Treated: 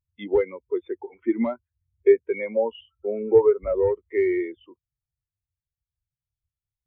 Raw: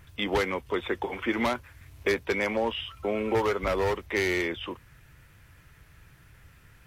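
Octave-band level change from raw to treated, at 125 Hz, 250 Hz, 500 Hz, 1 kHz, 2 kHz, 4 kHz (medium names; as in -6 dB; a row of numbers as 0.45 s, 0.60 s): -5.5 dB, +3.5 dB, +7.5 dB, -5.5 dB, -8.0 dB, under -10 dB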